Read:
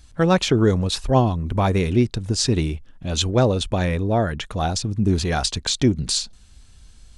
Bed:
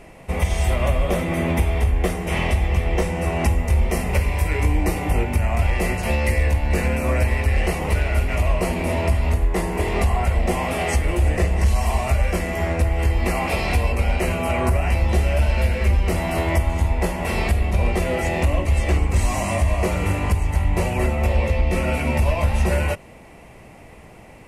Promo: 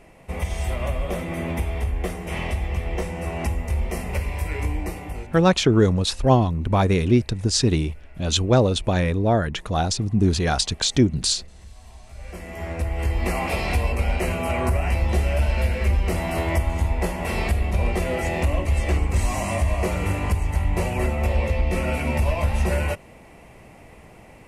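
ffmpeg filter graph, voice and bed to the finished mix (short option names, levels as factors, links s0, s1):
-filter_complex "[0:a]adelay=5150,volume=1.06[s0];[1:a]volume=9.44,afade=t=out:st=4.65:d=0.86:silence=0.0794328,afade=t=in:st=12.1:d=1.19:silence=0.0530884[s1];[s0][s1]amix=inputs=2:normalize=0"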